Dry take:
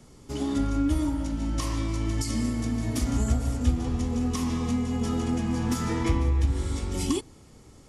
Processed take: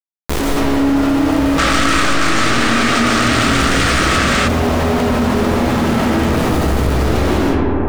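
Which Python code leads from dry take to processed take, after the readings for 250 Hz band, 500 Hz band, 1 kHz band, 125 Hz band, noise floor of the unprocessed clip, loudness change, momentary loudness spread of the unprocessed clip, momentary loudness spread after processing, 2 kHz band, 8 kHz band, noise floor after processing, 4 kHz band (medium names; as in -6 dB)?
+12.0 dB, +18.0 dB, +21.0 dB, +8.5 dB, -52 dBFS, +13.5 dB, 4 LU, 3 LU, +26.0 dB, +13.5 dB, -17 dBFS, +20.0 dB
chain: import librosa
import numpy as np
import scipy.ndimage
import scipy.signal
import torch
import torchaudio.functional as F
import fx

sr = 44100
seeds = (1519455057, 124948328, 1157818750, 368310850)

y = scipy.signal.sosfilt(scipy.signal.butter(4, 65.0, 'highpass', fs=sr, output='sos'), x)
y = fx.air_absorb(y, sr, metres=60.0)
y = y + 10.0 ** (-3.0 / 20.0) * np.pad(y, (int(149 * sr / 1000.0), 0))[:len(y)]
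y = fx.schmitt(y, sr, flips_db=-36.0)
y = fx.high_shelf(y, sr, hz=9400.0, db=-5.0)
y = fx.rider(y, sr, range_db=4, speed_s=0.5)
y = (np.mod(10.0 ** (24.0 / 20.0) * y + 1.0, 2.0) - 1.0) / 10.0 ** (24.0 / 20.0)
y = fx.rev_freeverb(y, sr, rt60_s=2.6, hf_ratio=0.3, predelay_ms=115, drr_db=-9.0)
y = fx.spec_box(y, sr, start_s=1.58, length_s=2.9, low_hz=1100.0, high_hz=9600.0, gain_db=12)
y = fx.hum_notches(y, sr, base_hz=50, count=5)
y = fx.env_flatten(y, sr, amount_pct=70)
y = y * librosa.db_to_amplitude(-3.0)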